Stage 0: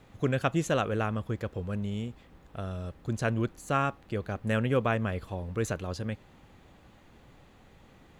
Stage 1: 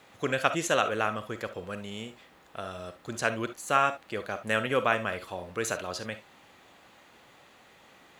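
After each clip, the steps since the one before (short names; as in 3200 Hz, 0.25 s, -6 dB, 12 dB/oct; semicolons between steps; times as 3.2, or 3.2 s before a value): HPF 890 Hz 6 dB/oct; reverb, pre-delay 10 ms, DRR 10 dB; gain +6.5 dB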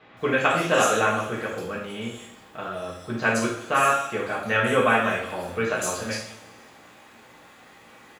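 bands offset in time lows, highs 0.17 s, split 3800 Hz; two-slope reverb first 0.52 s, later 2 s, from -18 dB, DRR -6 dB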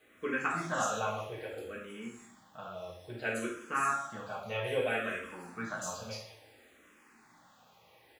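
bit-crush 10-bit; endless phaser -0.6 Hz; gain -9 dB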